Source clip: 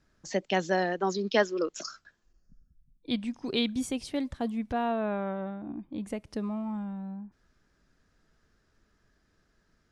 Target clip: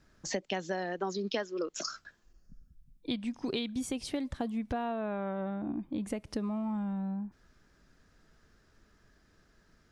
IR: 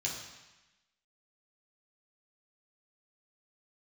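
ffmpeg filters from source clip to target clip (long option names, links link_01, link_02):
-af "acompressor=threshold=-35dB:ratio=8,volume=4.5dB"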